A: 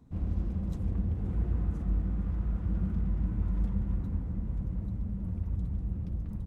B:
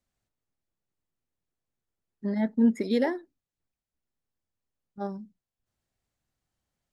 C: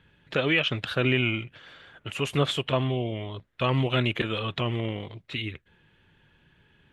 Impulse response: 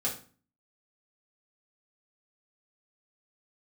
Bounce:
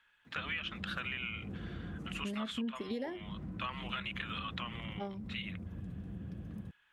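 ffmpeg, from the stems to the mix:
-filter_complex "[0:a]highpass=140,bandreject=frequency=900:width=9.5,acompressor=threshold=-41dB:ratio=4,adelay=250,volume=1dB[link_01];[1:a]volume=-4.5dB,asplit=2[link_02][link_03];[2:a]highpass=frequency=1200:width_type=q:width=1.7,volume=-8dB[link_04];[link_03]apad=whole_len=295968[link_05];[link_01][link_05]sidechaincompress=threshold=-45dB:ratio=8:attack=16:release=142[link_06];[link_06][link_02][link_04]amix=inputs=3:normalize=0,acompressor=threshold=-35dB:ratio=6"

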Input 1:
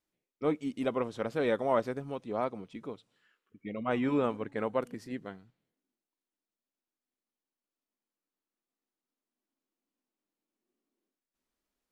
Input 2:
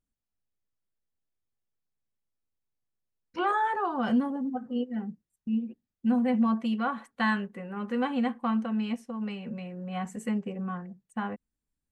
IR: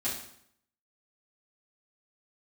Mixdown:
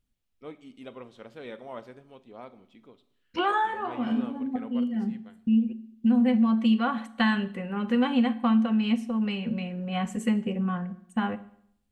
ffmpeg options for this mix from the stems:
-filter_complex "[0:a]volume=-13.5dB,asplit=3[link_01][link_02][link_03];[link_02]volume=-15dB[link_04];[1:a]lowshelf=frequency=230:gain=7,acompressor=threshold=-24dB:ratio=5,volume=2dB,asplit=2[link_05][link_06];[link_06]volume=-15.5dB[link_07];[link_03]apad=whole_len=525345[link_08];[link_05][link_08]sidechaincompress=threshold=-56dB:ratio=8:attack=16:release=151[link_09];[2:a]atrim=start_sample=2205[link_10];[link_04][link_07]amix=inputs=2:normalize=0[link_11];[link_11][link_10]afir=irnorm=-1:irlink=0[link_12];[link_01][link_09][link_12]amix=inputs=3:normalize=0,equalizer=frequency=3100:width_type=o:width=1:gain=7"

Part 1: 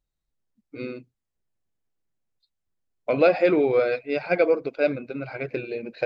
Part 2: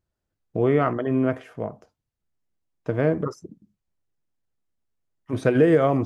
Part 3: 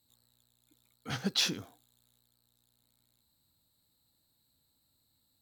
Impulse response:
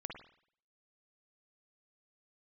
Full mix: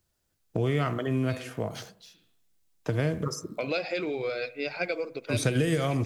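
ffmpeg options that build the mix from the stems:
-filter_complex "[0:a]adelay=500,volume=-6dB,asplit=2[link_01][link_02];[link_02]volume=-15dB[link_03];[1:a]volume=1dB,asplit=3[link_04][link_05][link_06];[link_05]volume=-8dB[link_07];[2:a]adelay=650,volume=-8.5dB,asplit=2[link_08][link_09];[link_09]volume=-23.5dB[link_10];[link_06]apad=whole_len=267391[link_11];[link_08][link_11]sidechaingate=range=-33dB:threshold=-50dB:ratio=16:detection=peak[link_12];[3:a]atrim=start_sample=2205[link_13];[link_03][link_07][link_10]amix=inputs=3:normalize=0[link_14];[link_14][link_13]afir=irnorm=-1:irlink=0[link_15];[link_01][link_04][link_12][link_15]amix=inputs=4:normalize=0,acrossover=split=140|3000[link_16][link_17][link_18];[link_17]acompressor=threshold=-30dB:ratio=4[link_19];[link_16][link_19][link_18]amix=inputs=3:normalize=0,highshelf=frequency=2700:gain=12"

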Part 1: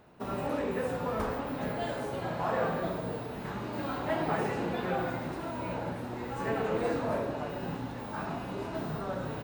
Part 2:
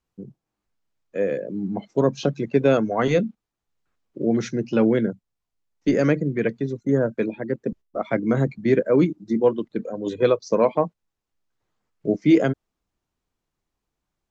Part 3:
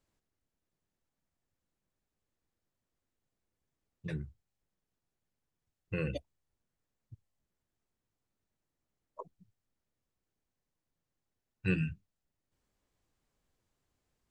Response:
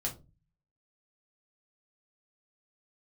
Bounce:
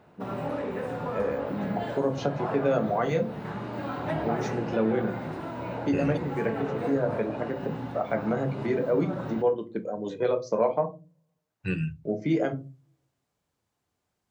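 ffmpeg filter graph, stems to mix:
-filter_complex "[0:a]lowpass=frequency=3000:poles=1,volume=0.5dB,asplit=2[link_01][link_02];[link_02]volume=-13.5dB[link_03];[1:a]equalizer=frequency=800:width=0.81:gain=7.5,volume=-8.5dB,asplit=2[link_04][link_05];[link_05]volume=-7.5dB[link_06];[2:a]volume=0dB,asplit=3[link_07][link_08][link_09];[link_08]volume=-15.5dB[link_10];[link_09]apad=whole_len=630684[link_11];[link_04][link_11]sidechaincompress=threshold=-45dB:ratio=8:attack=16:release=303[link_12];[link_01][link_12]amix=inputs=2:normalize=0,acompressor=threshold=-28dB:ratio=6,volume=0dB[link_13];[3:a]atrim=start_sample=2205[link_14];[link_03][link_06][link_10]amix=inputs=3:normalize=0[link_15];[link_15][link_14]afir=irnorm=-1:irlink=0[link_16];[link_07][link_13][link_16]amix=inputs=3:normalize=0,highpass=74"

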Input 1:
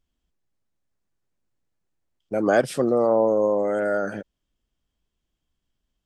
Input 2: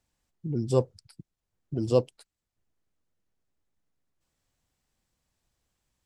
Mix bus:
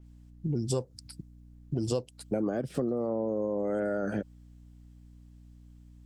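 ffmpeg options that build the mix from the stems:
ffmpeg -i stem1.wav -i stem2.wav -filter_complex "[0:a]deesser=0.85,lowshelf=frequency=430:gain=8,acrossover=split=410[link_01][link_02];[link_02]acompressor=threshold=-24dB:ratio=6[link_03];[link_01][link_03]amix=inputs=2:normalize=0,volume=-1dB[link_04];[1:a]aeval=exprs='val(0)+0.002*(sin(2*PI*60*n/s)+sin(2*PI*2*60*n/s)/2+sin(2*PI*3*60*n/s)/3+sin(2*PI*4*60*n/s)/4+sin(2*PI*5*60*n/s)/5)':channel_layout=same,adynamicequalizer=threshold=0.00158:dfrequency=3900:dqfactor=0.7:tfrequency=3900:tqfactor=0.7:attack=5:release=100:ratio=0.375:range=3.5:mode=boostabove:tftype=highshelf,volume=3dB[link_05];[link_04][link_05]amix=inputs=2:normalize=0,acompressor=threshold=-26dB:ratio=12" out.wav

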